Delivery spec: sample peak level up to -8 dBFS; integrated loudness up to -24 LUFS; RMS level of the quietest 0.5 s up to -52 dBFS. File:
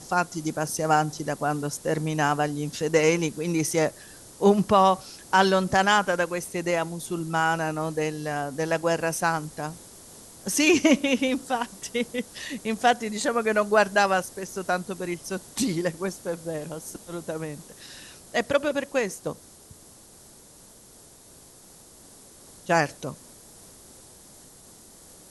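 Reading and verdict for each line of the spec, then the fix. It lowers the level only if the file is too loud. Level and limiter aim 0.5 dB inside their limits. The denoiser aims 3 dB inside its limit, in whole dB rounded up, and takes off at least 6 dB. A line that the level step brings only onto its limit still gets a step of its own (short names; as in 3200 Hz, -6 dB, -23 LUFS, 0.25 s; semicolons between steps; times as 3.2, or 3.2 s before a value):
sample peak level -6.0 dBFS: fail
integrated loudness -25.0 LUFS: OK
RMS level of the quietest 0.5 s -51 dBFS: fail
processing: denoiser 6 dB, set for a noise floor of -51 dBFS; limiter -8.5 dBFS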